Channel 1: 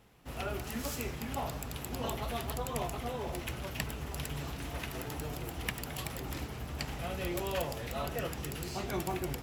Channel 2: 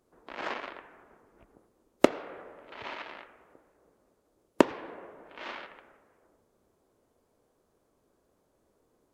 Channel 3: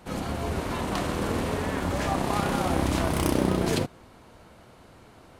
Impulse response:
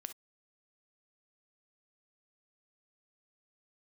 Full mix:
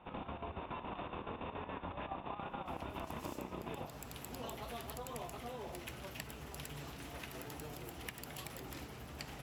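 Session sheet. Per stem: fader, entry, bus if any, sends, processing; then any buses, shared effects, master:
−9.0 dB, 2.40 s, send −4 dB, low-shelf EQ 83 Hz −10 dB
muted
−5.5 dB, 0.00 s, send −4.5 dB, square-wave tremolo 7.1 Hz, depth 65%, duty 65%; Chebyshev low-pass with heavy ripple 3,700 Hz, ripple 9 dB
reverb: on, pre-delay 3 ms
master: downward compressor 6 to 1, threshold −40 dBFS, peak gain reduction 12 dB

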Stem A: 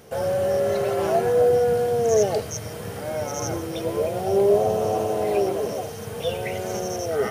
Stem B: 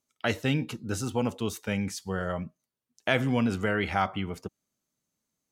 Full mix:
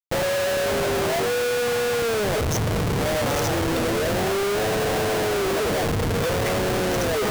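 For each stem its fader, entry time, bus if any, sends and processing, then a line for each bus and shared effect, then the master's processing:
+2.5 dB, 0.00 s, no send, brickwall limiter −16 dBFS, peak gain reduction 8 dB
−11.0 dB, 0.45 s, no send, no processing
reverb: not used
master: comparator with hysteresis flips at −29 dBFS

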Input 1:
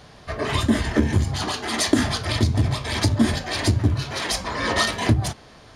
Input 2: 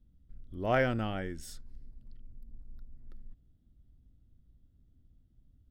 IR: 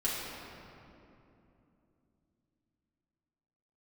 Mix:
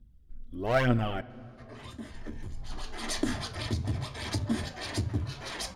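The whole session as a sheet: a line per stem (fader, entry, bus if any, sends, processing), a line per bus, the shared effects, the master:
0:02.59 −23 dB → 0:03.05 −11.5 dB, 1.30 s, no send, no processing
+1.0 dB, 0.00 s, muted 0:01.21–0:02.14, send −23 dB, asymmetric clip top −26 dBFS; phase shifter 1.1 Hz, delay 4.7 ms, feedback 60%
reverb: on, RT60 2.9 s, pre-delay 4 ms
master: no processing

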